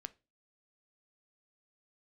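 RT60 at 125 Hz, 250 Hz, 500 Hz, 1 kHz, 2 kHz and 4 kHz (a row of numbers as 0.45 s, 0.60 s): 0.40 s, 0.40 s, 0.35 s, 0.25 s, 0.25 s, 0.25 s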